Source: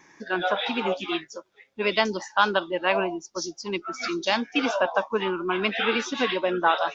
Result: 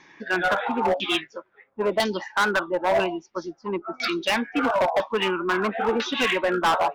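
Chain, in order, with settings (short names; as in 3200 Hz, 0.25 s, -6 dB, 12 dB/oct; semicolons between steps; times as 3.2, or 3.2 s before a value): LFO low-pass saw down 1 Hz 690–4200 Hz; hard clip -18.5 dBFS, distortion -7 dB; gain +1.5 dB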